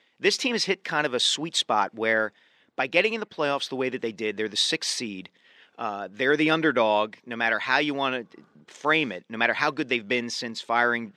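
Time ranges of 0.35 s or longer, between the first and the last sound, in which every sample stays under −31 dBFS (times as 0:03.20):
0:02.27–0:02.78
0:05.26–0:05.79
0:08.22–0:08.75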